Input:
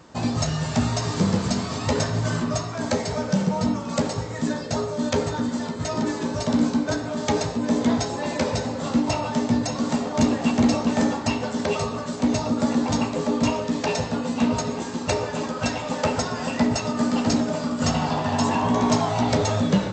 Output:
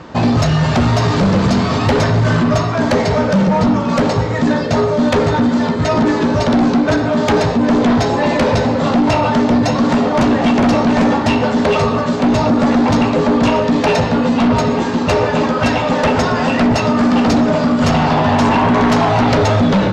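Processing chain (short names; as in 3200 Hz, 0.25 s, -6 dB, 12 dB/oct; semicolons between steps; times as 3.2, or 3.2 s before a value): LPF 3600 Hz 12 dB/oct; in parallel at -3 dB: limiter -18.5 dBFS, peak gain reduction 7.5 dB; on the sum: sine folder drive 6 dB, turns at -8.5 dBFS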